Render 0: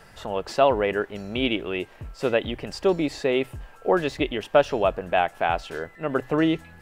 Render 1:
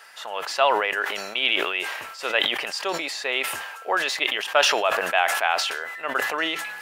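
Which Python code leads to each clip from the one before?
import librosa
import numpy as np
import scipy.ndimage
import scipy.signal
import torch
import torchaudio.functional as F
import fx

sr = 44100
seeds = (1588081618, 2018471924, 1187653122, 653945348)

y = scipy.signal.sosfilt(scipy.signal.butter(2, 1100.0, 'highpass', fs=sr, output='sos'), x)
y = fx.notch(y, sr, hz=7800.0, q=29.0)
y = fx.sustainer(y, sr, db_per_s=39.0)
y = y * librosa.db_to_amplitude(6.0)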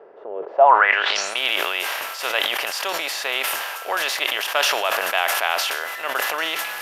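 y = fx.bin_compress(x, sr, power=0.6)
y = fx.low_shelf(y, sr, hz=390.0, db=-9.5)
y = fx.filter_sweep_lowpass(y, sr, from_hz=410.0, to_hz=13000.0, start_s=0.47, end_s=1.42, q=5.0)
y = y * librosa.db_to_amplitude(-2.5)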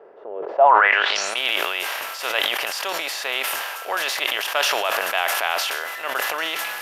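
y = fx.sustainer(x, sr, db_per_s=29.0)
y = y * librosa.db_to_amplitude(-1.5)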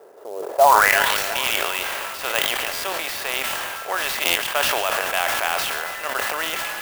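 y = fx.echo_split(x, sr, split_hz=1600.0, low_ms=342, high_ms=140, feedback_pct=52, wet_db=-13.0)
y = fx.buffer_glitch(y, sr, at_s=(2.73, 4.25), block=512, repeats=8)
y = fx.clock_jitter(y, sr, seeds[0], jitter_ms=0.034)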